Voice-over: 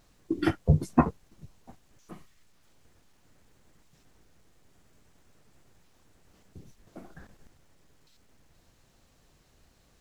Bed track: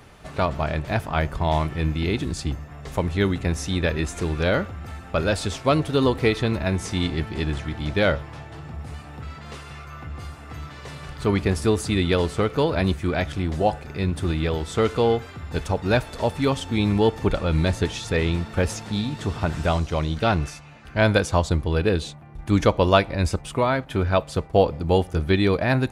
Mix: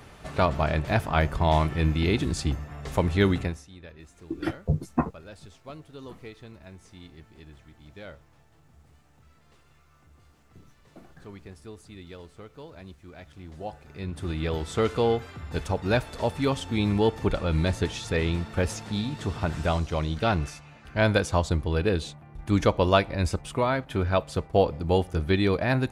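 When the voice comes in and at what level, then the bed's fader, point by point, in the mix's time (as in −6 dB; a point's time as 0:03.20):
4.00 s, −3.5 dB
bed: 0:03.41 0 dB
0:03.67 −23 dB
0:13.09 −23 dB
0:14.55 −3.5 dB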